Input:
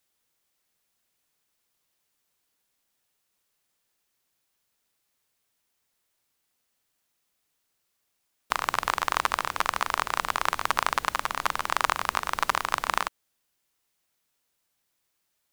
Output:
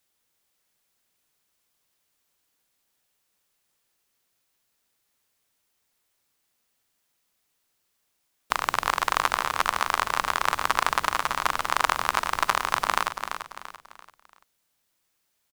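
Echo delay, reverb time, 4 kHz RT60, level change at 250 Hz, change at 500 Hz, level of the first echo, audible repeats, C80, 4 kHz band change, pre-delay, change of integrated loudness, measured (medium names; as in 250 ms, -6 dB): 339 ms, no reverb, no reverb, +2.0 dB, +2.5 dB, -8.0 dB, 4, no reverb, +2.5 dB, no reverb, +2.0 dB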